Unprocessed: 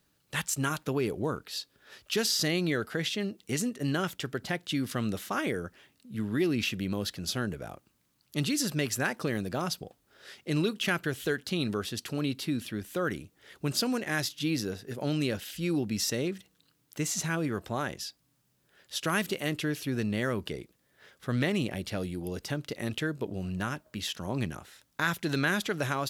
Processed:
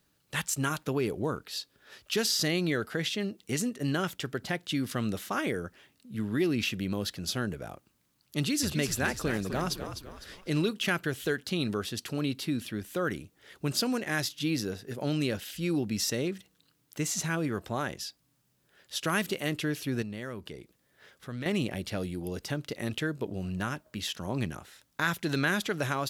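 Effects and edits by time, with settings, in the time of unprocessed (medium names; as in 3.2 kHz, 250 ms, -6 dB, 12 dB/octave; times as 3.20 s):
8.37–10.72 s: frequency-shifting echo 253 ms, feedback 41%, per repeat -59 Hz, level -8.5 dB
20.02–21.46 s: compression 1.5:1, threshold -49 dBFS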